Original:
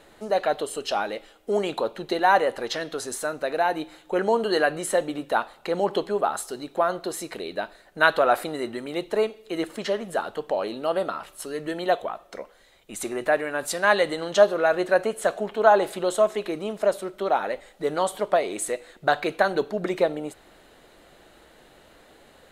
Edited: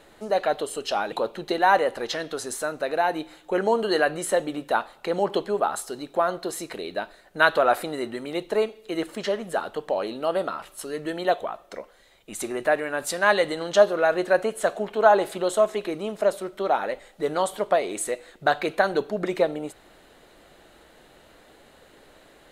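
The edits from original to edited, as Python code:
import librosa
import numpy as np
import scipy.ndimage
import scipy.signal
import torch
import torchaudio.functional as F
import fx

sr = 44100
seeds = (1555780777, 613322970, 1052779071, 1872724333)

y = fx.edit(x, sr, fx.cut(start_s=1.12, length_s=0.61), tone=tone)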